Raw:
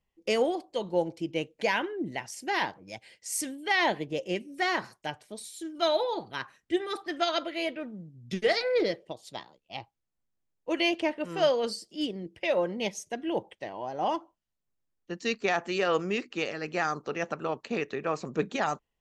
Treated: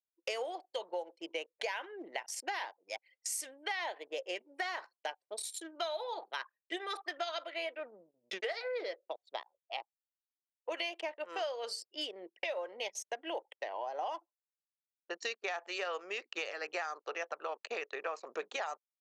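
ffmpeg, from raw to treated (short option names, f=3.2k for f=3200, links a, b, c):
-filter_complex "[0:a]asettb=1/sr,asplit=3[a][b][c];[a]atrim=end=7.524[d];[b]atrim=start=7.52:end=10.72,asetpts=PTS-STARTPTS,afade=t=in:d=0.004:c=qsin,afade=t=out:st=3.196:d=0.004:c=qsin,bass=f=250:g=1,treble=f=4k:g=-7[e];[c]atrim=start=10.716[f];[d][e]acrossfade=d=0.004:c1=hsin:c2=qsin[g];[g][f]acrossfade=d=0.004:c1=qsin:c2=hsin,anlmdn=0.0631,highpass=f=510:w=0.5412,highpass=f=510:w=1.3066,acompressor=threshold=-41dB:ratio=6,volume=5dB"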